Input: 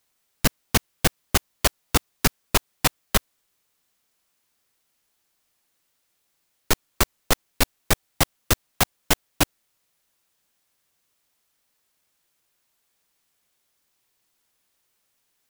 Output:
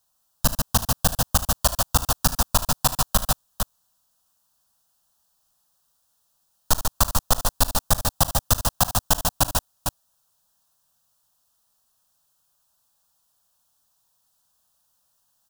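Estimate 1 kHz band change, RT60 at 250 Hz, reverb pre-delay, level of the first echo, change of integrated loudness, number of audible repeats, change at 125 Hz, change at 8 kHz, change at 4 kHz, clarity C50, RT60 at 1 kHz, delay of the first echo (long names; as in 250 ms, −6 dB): +3.5 dB, no reverb audible, no reverb audible, −18.5 dB, +1.5 dB, 4, +2.5 dB, +3.5 dB, 0.0 dB, no reverb audible, no reverb audible, 40 ms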